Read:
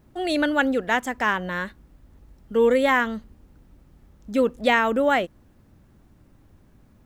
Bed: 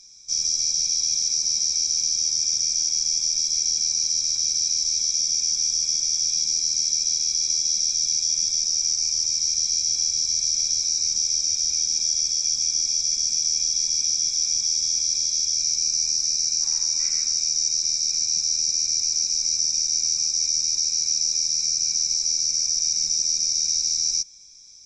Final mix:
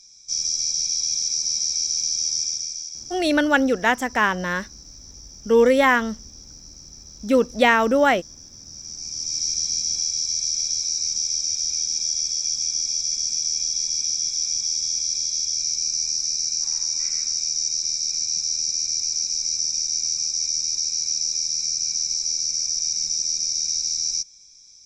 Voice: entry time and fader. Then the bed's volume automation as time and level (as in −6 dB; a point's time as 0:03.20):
2.95 s, +3.0 dB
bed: 0:02.39 −1 dB
0:03.38 −21.5 dB
0:08.56 −21.5 dB
0:09.39 −1.5 dB